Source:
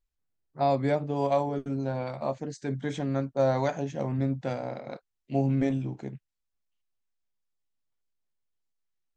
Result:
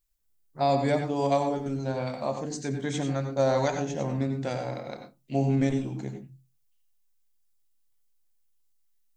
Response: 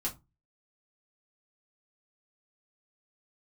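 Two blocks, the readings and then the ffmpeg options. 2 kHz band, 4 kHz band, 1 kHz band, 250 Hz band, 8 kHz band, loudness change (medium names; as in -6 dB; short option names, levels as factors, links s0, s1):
+3.0 dB, +6.0 dB, +1.5 dB, +1.0 dB, no reading, +1.0 dB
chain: -filter_complex "[0:a]crystalizer=i=2.5:c=0,asplit=2[s0][s1];[1:a]atrim=start_sample=2205,adelay=87[s2];[s1][s2]afir=irnorm=-1:irlink=0,volume=0.355[s3];[s0][s3]amix=inputs=2:normalize=0"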